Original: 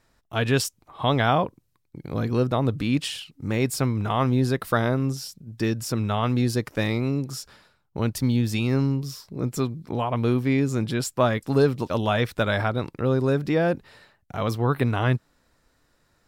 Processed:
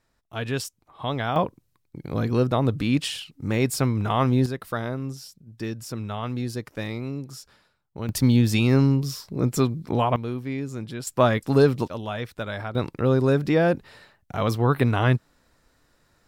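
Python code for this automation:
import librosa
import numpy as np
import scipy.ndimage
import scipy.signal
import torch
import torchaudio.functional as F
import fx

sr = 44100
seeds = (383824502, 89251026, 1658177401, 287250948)

y = fx.gain(x, sr, db=fx.steps((0.0, -6.0), (1.36, 1.0), (4.46, -6.5), (8.09, 4.0), (10.16, -8.0), (11.07, 2.0), (11.88, -8.0), (12.75, 2.0)))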